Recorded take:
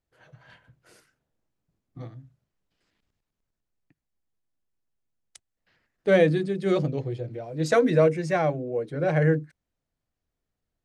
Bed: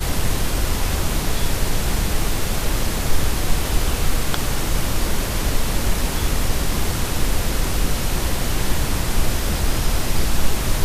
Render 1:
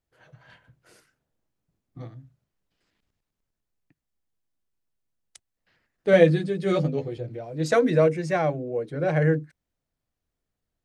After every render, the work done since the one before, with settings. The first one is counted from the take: 6.12–7.18 s: doubling 12 ms -3.5 dB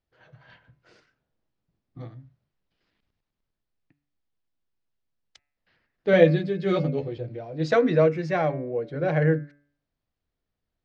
low-pass 5.1 kHz 24 dB/octave; de-hum 144 Hz, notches 19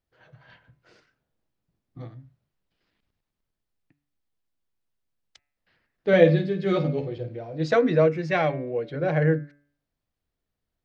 6.20–7.59 s: flutter echo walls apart 8.9 m, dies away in 0.27 s; 8.31–8.96 s: peaking EQ 3 kHz +8.5 dB 1.5 oct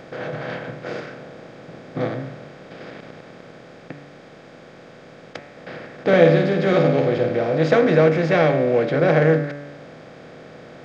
spectral levelling over time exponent 0.4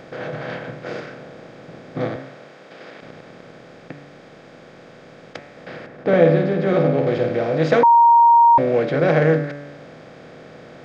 2.16–3.02 s: high-pass 420 Hz 6 dB/octave; 5.86–7.07 s: treble shelf 2.3 kHz -10 dB; 7.83–8.58 s: bleep 936 Hz -8 dBFS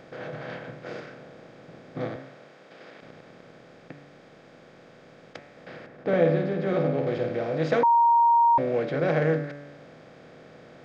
trim -7.5 dB

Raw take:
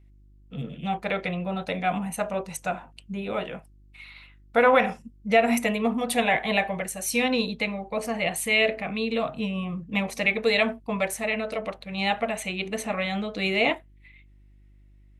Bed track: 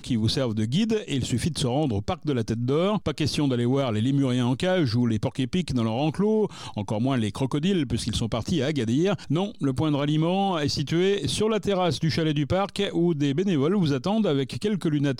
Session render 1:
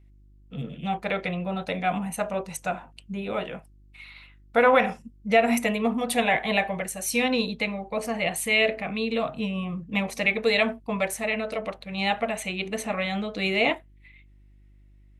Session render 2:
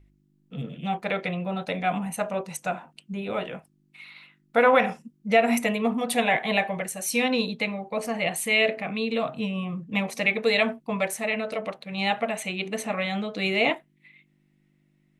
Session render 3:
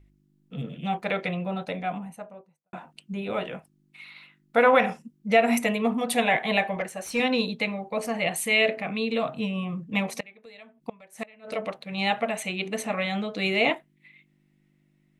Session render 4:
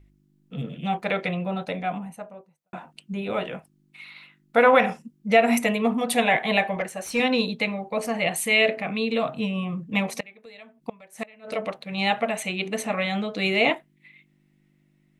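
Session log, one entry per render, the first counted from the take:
no audible change
de-hum 50 Hz, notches 2
1.29–2.73 s: studio fade out; 6.76–7.20 s: overdrive pedal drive 12 dB, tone 1.2 kHz, clips at -13.5 dBFS; 10.20–11.53 s: inverted gate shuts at -20 dBFS, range -26 dB
trim +2 dB

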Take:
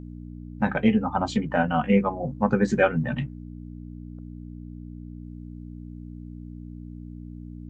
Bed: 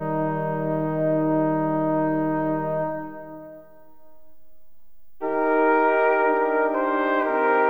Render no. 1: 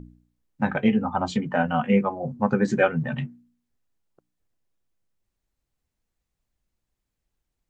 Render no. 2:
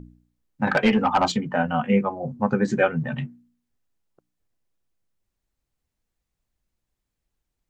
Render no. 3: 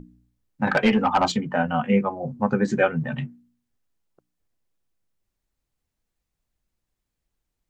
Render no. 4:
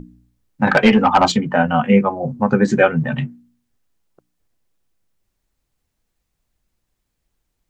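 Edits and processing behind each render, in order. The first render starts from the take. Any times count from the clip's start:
de-hum 60 Hz, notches 5
0.67–1.32 s: overdrive pedal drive 18 dB, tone 5.1 kHz, clips at -8.5 dBFS
hum notches 60/120 Hz
trim +7 dB; peak limiter -2 dBFS, peak gain reduction 2.5 dB

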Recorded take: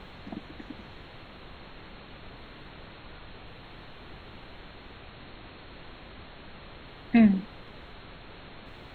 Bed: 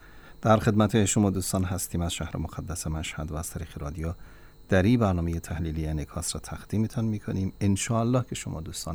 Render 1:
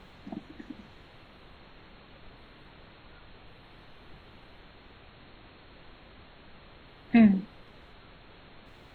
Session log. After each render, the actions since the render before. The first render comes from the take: noise print and reduce 6 dB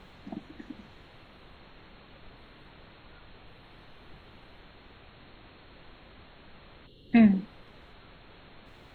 6.87–7.13 s: time-frequency box 570–2700 Hz -18 dB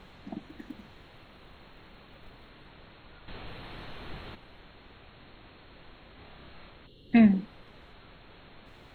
0.46–2.49 s: short-mantissa float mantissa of 4-bit; 3.28–4.35 s: gain +9 dB; 6.14–6.70 s: flutter echo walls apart 5.3 m, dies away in 0.53 s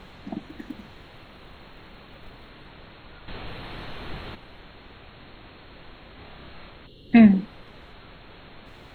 trim +6 dB

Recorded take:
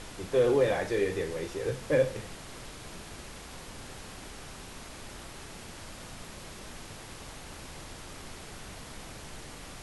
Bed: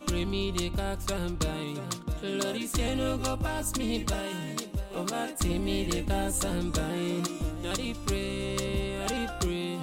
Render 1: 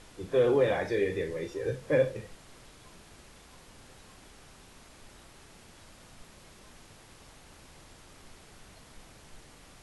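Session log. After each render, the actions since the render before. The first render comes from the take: noise print and reduce 9 dB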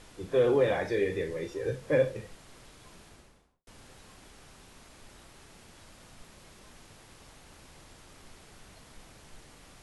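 3.02–3.67 s: studio fade out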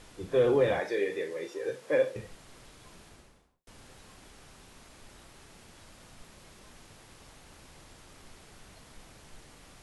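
0.80–2.16 s: high-pass 330 Hz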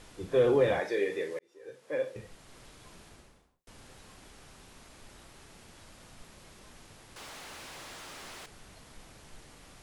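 1.39–2.64 s: fade in; 7.16–8.46 s: overdrive pedal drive 29 dB, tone 5.3 kHz, clips at -38.5 dBFS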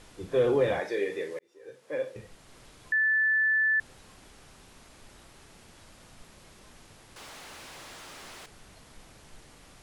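2.92–3.80 s: bleep 1.75 kHz -21.5 dBFS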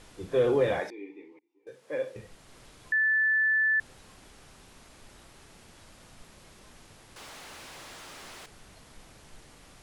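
0.90–1.67 s: vowel filter u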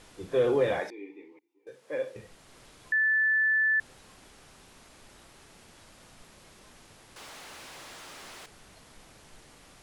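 bass shelf 150 Hz -4.5 dB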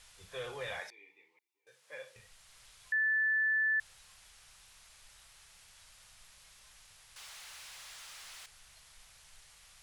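amplifier tone stack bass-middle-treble 10-0-10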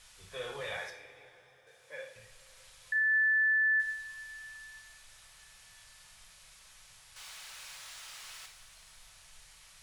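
two-slope reverb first 0.51 s, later 4.4 s, from -18 dB, DRR 2 dB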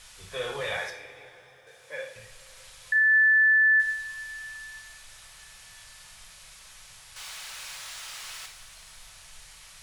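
trim +7.5 dB

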